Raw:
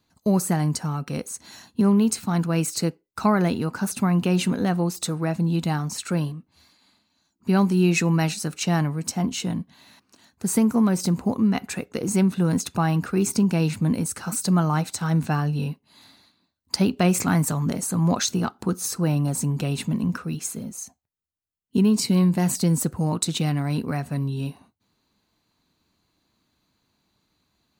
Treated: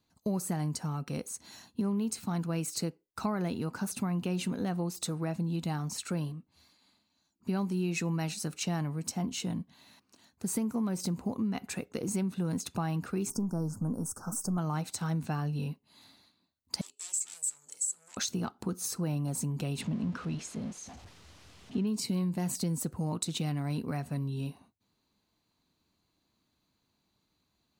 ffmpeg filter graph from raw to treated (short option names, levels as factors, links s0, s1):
-filter_complex "[0:a]asettb=1/sr,asplit=3[s0][s1][s2];[s0]atrim=end=13.304[s3];[s1]atrim=start=13.3:end=14.58,asetpts=PTS-STARTPTS,afade=t=in:d=0.004:c=qsin,afade=t=out:st=1.276:d=0.004:c=qsin,aeval=exprs='if(lt(val(0),0),0.708*val(0),val(0))':c=same,asuperstop=centerf=2800:order=12:qfactor=0.76[s4];[s2]atrim=start=14.576[s5];[s3][s4]acrossfade=d=0.004:c1=hsin:c2=qsin[s6];[s6][s5]acrossfade=d=0.004:c1=qsin:c2=hsin,asettb=1/sr,asplit=3[s7][s8][s9];[s7]atrim=end=16.814[s10];[s8]atrim=start=16.81:end=18.17,asetpts=PTS-STARTPTS,afade=t=in:d=0.004:c=qsin,afade=t=out:st=1.356:d=0.004:c=qsin,aecho=1:1:2.3:0.82,atrim=end_sample=59976,aeval=exprs='0.355*sin(PI/2*4.47*val(0)/0.355)':c=same,bandpass=f=7800:t=q:w=11[s11];[s9]atrim=start=18.166[s12];[s10][s11]acrossfade=d=0.004:c1=hsin:c2=qsin[s13];[s13][s12]acrossfade=d=0.004:c1=qsin:c2=hsin,asettb=1/sr,asplit=3[s14][s15][s16];[s14]atrim=end=19.814[s17];[s15]atrim=start=19.81:end=21.87,asetpts=PTS-STARTPTS,afade=t=in:d=0.004:c=qsin,afade=t=out:st=2.056:d=0.004:c=qsin,aeval=exprs='val(0)+0.5*0.0178*sgn(val(0))':c=same,lowpass=4800[s18];[s16]atrim=start=21.866[s19];[s17][s18]acrossfade=d=0.004:c1=hsin:c2=qsin[s20];[s20][s19]acrossfade=d=0.004:c1=qsin:c2=hsin,equalizer=f=1600:w=1.5:g=-2.5,acompressor=threshold=0.0631:ratio=3,volume=0.501"